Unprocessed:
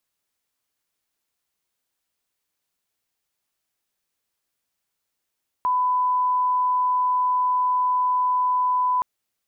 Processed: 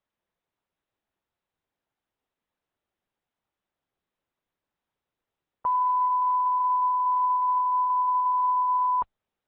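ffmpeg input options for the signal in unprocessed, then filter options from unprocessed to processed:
-f lavfi -i "sine=f=1000:d=3.37:r=44100,volume=0.06dB"
-af "lowpass=1100" -ar 48000 -c:a libopus -b:a 6k

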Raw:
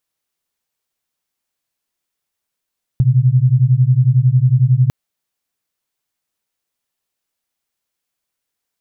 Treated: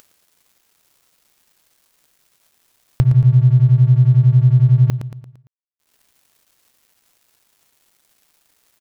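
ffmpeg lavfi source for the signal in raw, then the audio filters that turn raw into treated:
-f lavfi -i "aevalsrc='0.251*(sin(2*PI*122*t)+sin(2*PI*133*t))':d=1.9:s=44100"
-af "acompressor=mode=upward:threshold=0.224:ratio=2.5,aeval=exprs='sgn(val(0))*max(abs(val(0))-0.015,0)':c=same,aecho=1:1:114|228|342|456|570:0.251|0.118|0.0555|0.0261|0.0123"

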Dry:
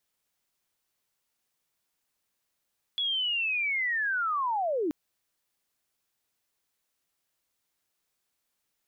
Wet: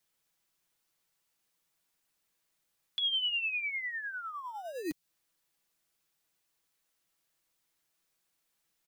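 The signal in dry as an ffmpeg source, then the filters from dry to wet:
-f lavfi -i "aevalsrc='pow(10,(-26+0.5*t/1.93)/20)*sin(2*PI*(3400*t-3120*t*t/(2*1.93)))':d=1.93:s=44100"
-filter_complex "[0:a]aecho=1:1:6.1:0.43,acrossover=split=260|3000[s0][s1][s2];[s1]acompressor=threshold=0.00891:ratio=6[s3];[s0][s3][s2]amix=inputs=3:normalize=0,acrossover=split=530|1200[s4][s5][s6];[s4]acrusher=samples=20:mix=1:aa=0.000001[s7];[s7][s5][s6]amix=inputs=3:normalize=0"

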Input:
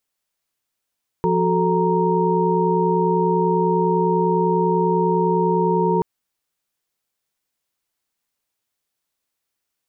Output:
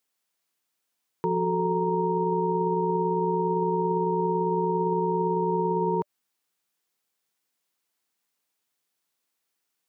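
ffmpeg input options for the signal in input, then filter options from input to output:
-f lavfi -i "aevalsrc='0.0891*(sin(2*PI*174.61*t)+sin(2*PI*369.99*t)+sin(2*PI*440*t)+sin(2*PI*932.33*t))':d=4.78:s=44100"
-af "highpass=150,bandreject=f=590:w=13,alimiter=limit=0.133:level=0:latency=1:release=83"

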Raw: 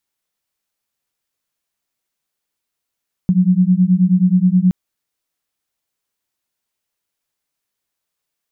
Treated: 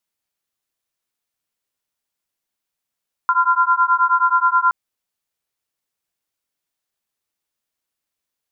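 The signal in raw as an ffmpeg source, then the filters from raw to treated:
-f lavfi -i "aevalsrc='0.224*(sin(2*PI*178*t)+sin(2*PI*187.4*t))':d=1.42:s=44100"
-af "aeval=exprs='val(0)*sin(2*PI*1200*n/s)':c=same"

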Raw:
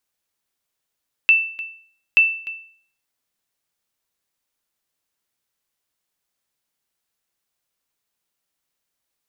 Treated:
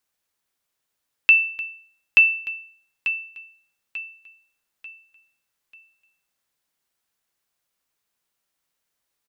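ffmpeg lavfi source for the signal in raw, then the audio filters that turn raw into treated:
-f lavfi -i "aevalsrc='0.473*(sin(2*PI*2660*mod(t,0.88))*exp(-6.91*mod(t,0.88)/0.52)+0.126*sin(2*PI*2660*max(mod(t,0.88)-0.3,0))*exp(-6.91*max(mod(t,0.88)-0.3,0)/0.52))':d=1.76:s=44100"
-filter_complex "[0:a]acrossover=split=1800[s0][s1];[s0]crystalizer=i=4.5:c=0[s2];[s2][s1]amix=inputs=2:normalize=0,aecho=1:1:891|1782|2673|3564:0.282|0.11|0.0429|0.0167"

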